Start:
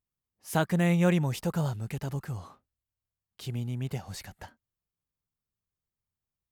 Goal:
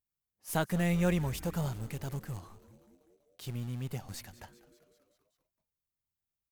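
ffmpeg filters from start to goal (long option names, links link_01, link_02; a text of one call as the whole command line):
ffmpeg -i in.wav -filter_complex "[0:a]highshelf=frequency=9600:gain=8,asplit=2[link_01][link_02];[link_02]acrusher=bits=3:dc=4:mix=0:aa=0.000001,volume=-8.5dB[link_03];[link_01][link_03]amix=inputs=2:normalize=0,asplit=7[link_04][link_05][link_06][link_07][link_08][link_09][link_10];[link_05]adelay=194,afreqshift=-120,volume=-18dB[link_11];[link_06]adelay=388,afreqshift=-240,volume=-22dB[link_12];[link_07]adelay=582,afreqshift=-360,volume=-26dB[link_13];[link_08]adelay=776,afreqshift=-480,volume=-30dB[link_14];[link_09]adelay=970,afreqshift=-600,volume=-34.1dB[link_15];[link_10]adelay=1164,afreqshift=-720,volume=-38.1dB[link_16];[link_04][link_11][link_12][link_13][link_14][link_15][link_16]amix=inputs=7:normalize=0,volume=-6dB" out.wav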